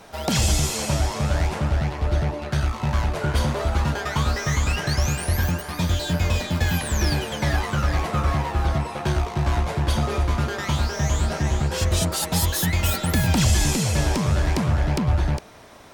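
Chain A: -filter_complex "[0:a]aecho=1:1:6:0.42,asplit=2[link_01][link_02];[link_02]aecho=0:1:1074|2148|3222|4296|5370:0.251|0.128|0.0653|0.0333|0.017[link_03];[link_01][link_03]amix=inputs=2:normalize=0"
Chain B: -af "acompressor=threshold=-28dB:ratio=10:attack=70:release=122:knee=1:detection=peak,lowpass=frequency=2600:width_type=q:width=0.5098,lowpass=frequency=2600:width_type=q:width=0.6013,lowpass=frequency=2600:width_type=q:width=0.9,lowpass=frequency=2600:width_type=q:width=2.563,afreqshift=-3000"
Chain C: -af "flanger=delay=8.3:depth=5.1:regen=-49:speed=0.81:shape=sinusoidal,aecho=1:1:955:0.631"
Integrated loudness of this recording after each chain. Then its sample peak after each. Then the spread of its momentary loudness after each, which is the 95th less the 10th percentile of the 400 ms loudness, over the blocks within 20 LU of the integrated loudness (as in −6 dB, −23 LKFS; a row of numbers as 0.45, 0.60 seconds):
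−23.0, −24.5, −26.0 LKFS; −7.0, −11.5, −11.0 dBFS; 4, 1, 4 LU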